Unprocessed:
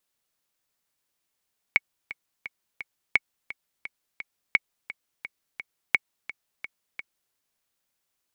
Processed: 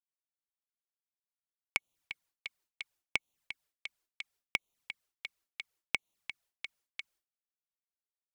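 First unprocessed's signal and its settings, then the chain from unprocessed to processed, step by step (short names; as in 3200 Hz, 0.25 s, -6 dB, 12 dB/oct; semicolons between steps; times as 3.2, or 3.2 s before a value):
metronome 172 bpm, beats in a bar 4, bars 4, 2220 Hz, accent 16.5 dB -5 dBFS
expander -58 dBFS; compressor 6:1, threshold -21 dBFS; envelope flanger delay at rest 6.4 ms, full sweep at -36 dBFS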